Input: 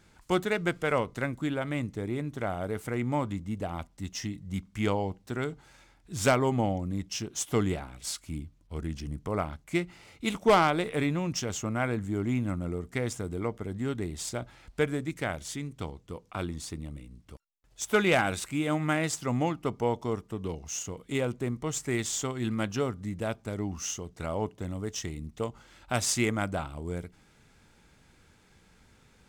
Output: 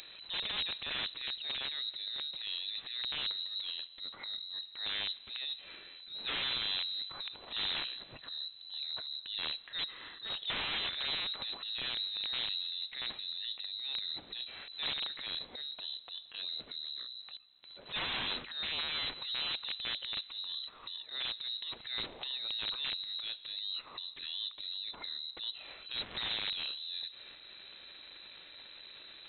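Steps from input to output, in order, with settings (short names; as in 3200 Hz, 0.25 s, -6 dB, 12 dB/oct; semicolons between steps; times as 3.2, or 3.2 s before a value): transient shaper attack -9 dB, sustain +11 dB; upward compressor, threshold -30 dBFS; wrapped overs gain 21.5 dB; on a send at -22 dB: reverb RT60 2.5 s, pre-delay 95 ms; on the sum: inverted band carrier 4000 Hz; gain -8 dB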